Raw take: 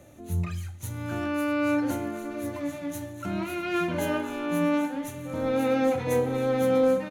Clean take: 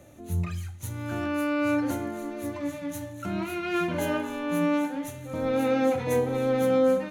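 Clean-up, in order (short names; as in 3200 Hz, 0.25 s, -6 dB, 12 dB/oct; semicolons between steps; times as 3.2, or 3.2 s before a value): clip repair -15.5 dBFS; inverse comb 0.644 s -17 dB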